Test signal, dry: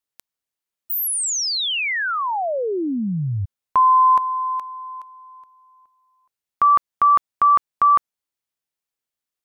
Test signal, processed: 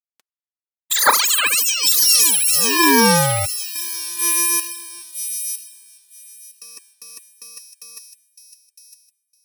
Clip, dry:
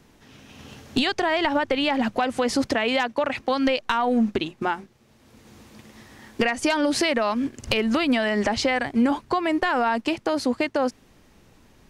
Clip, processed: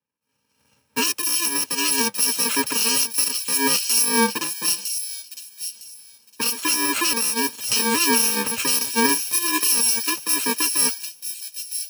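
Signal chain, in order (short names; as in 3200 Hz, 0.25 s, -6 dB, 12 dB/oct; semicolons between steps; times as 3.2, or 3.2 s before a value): FFT order left unsorted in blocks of 64 samples; weighting filter A; in parallel at +2 dB: limiter -16 dBFS; on the sum: notch comb 370 Hz; negative-ratio compressor -19 dBFS, ratio -0.5; thin delay 0.958 s, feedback 42%, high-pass 3200 Hz, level -3 dB; three-band expander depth 100%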